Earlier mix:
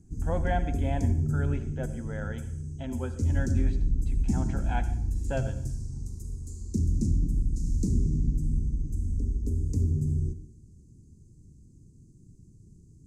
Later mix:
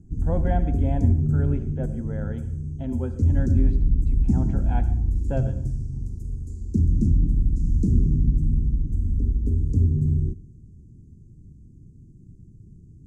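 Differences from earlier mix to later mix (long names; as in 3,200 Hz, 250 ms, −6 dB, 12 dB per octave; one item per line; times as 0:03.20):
background: send −9.5 dB
master: add tilt shelving filter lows +8 dB, about 770 Hz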